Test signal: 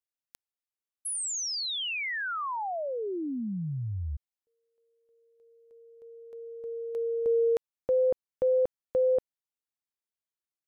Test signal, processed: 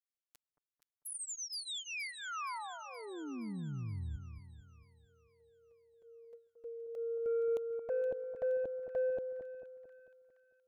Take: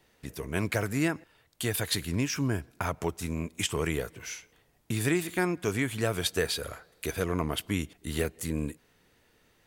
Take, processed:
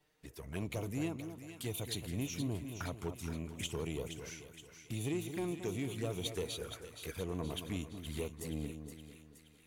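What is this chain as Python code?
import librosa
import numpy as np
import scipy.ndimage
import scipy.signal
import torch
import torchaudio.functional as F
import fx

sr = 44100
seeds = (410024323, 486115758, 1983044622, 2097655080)

y = fx.env_flanger(x, sr, rest_ms=6.9, full_db=-27.0)
y = 10.0 ** (-22.0 / 20.0) * np.tanh(y / 10.0 ** (-22.0 / 20.0))
y = fx.echo_split(y, sr, split_hz=1300.0, low_ms=223, high_ms=471, feedback_pct=52, wet_db=-8.5)
y = y * 10.0 ** (-7.0 / 20.0)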